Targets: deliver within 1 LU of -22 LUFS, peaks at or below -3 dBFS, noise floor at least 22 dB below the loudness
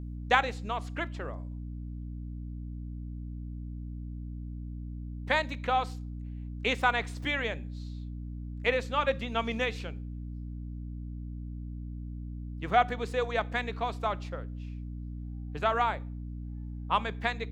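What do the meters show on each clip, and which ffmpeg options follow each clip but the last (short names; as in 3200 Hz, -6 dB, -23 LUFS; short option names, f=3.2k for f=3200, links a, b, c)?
hum 60 Hz; harmonics up to 300 Hz; hum level -36 dBFS; loudness -33.0 LUFS; peak -7.5 dBFS; loudness target -22.0 LUFS
-> -af "bandreject=f=60:t=h:w=6,bandreject=f=120:t=h:w=6,bandreject=f=180:t=h:w=6,bandreject=f=240:t=h:w=6,bandreject=f=300:t=h:w=6"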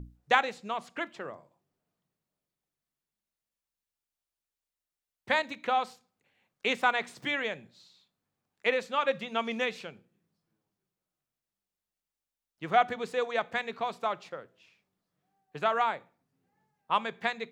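hum none; loudness -30.5 LUFS; peak -7.5 dBFS; loudness target -22.0 LUFS
-> -af "volume=8.5dB,alimiter=limit=-3dB:level=0:latency=1"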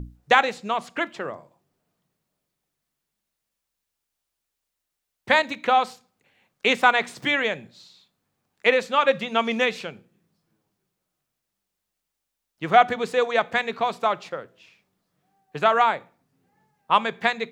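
loudness -22.0 LUFS; peak -3.0 dBFS; noise floor -82 dBFS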